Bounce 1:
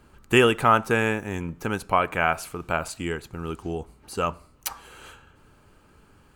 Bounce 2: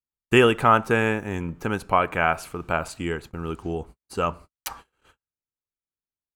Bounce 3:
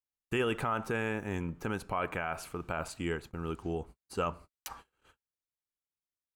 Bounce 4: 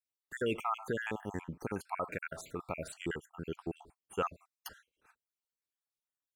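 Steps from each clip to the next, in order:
noise gate −42 dBFS, range −50 dB; high-shelf EQ 3,900 Hz −5.5 dB; level +1.5 dB
brickwall limiter −15.5 dBFS, peak gain reduction 11 dB; level −6 dB
time-frequency cells dropped at random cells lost 55%; low-shelf EQ 66 Hz −11.5 dB

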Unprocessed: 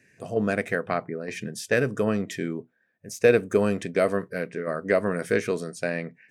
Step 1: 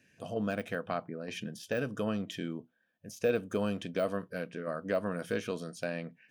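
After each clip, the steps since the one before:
de-essing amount 85%
thirty-one-band graphic EQ 125 Hz −5 dB, 400 Hz −8 dB, 2,000 Hz −11 dB, 3,150 Hz +9 dB, 8,000 Hz −7 dB
in parallel at −1 dB: downward compressor, threshold −34 dBFS, peak gain reduction 16 dB
on the sum: level −8.5 dB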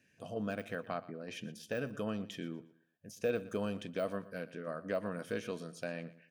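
repeating echo 119 ms, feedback 28%, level −17.5 dB
level −4.5 dB

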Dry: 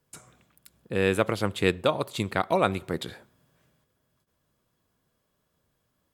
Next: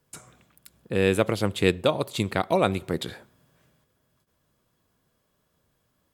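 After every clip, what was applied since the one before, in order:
dynamic equaliser 1,300 Hz, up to −5 dB, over −39 dBFS, Q 0.95
level +3 dB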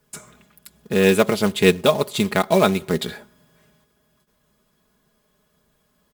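floating-point word with a short mantissa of 2 bits
comb filter 4.8 ms, depth 68%
level +4.5 dB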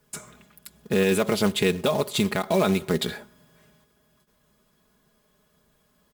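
brickwall limiter −11.5 dBFS, peak gain reduction 10 dB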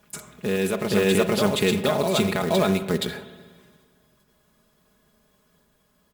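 backwards echo 472 ms −3.5 dB
spring reverb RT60 1.6 s, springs 40/52 ms, chirp 50 ms, DRR 11.5 dB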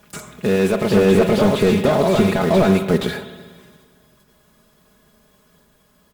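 slew-rate limiting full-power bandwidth 69 Hz
level +7.5 dB

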